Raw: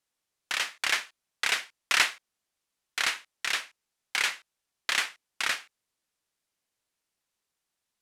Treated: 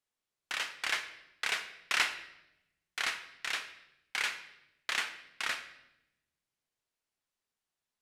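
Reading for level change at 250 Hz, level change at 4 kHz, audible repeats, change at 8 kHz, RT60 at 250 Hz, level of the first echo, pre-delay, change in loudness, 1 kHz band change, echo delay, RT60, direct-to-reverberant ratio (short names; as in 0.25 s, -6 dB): -4.5 dB, -6.0 dB, none, -8.0 dB, 1.3 s, none, 3 ms, -6.0 dB, -5.0 dB, none, 0.85 s, 8.5 dB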